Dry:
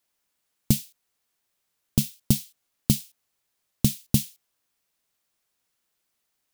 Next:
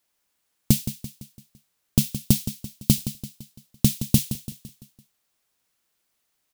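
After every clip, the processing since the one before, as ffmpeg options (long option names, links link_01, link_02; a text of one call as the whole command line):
ffmpeg -i in.wav -af "aecho=1:1:169|338|507|676|845:0.251|0.121|0.0579|0.0278|0.0133,volume=2.5dB" out.wav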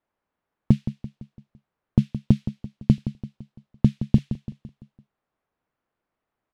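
ffmpeg -i in.wav -af "lowpass=1300,volume=2dB" out.wav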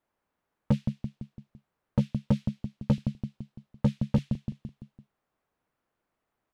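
ffmpeg -i in.wav -af "asoftclip=type=tanh:threshold=-17dB,volume=1dB" out.wav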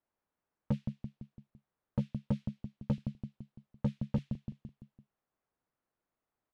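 ffmpeg -i in.wav -af "highshelf=frequency=3900:gain=-7,volume=-7.5dB" out.wav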